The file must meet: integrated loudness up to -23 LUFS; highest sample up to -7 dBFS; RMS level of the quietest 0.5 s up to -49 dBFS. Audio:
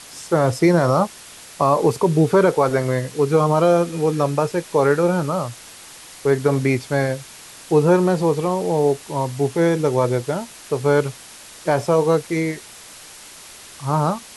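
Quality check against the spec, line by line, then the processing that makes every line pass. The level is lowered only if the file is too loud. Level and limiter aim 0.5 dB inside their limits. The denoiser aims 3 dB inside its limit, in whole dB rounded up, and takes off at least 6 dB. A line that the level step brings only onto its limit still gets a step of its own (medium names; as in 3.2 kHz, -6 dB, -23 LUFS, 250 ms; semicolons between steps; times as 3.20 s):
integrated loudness -19.5 LUFS: fail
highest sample -5.5 dBFS: fail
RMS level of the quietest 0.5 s -41 dBFS: fail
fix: noise reduction 7 dB, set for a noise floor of -41 dBFS; trim -4 dB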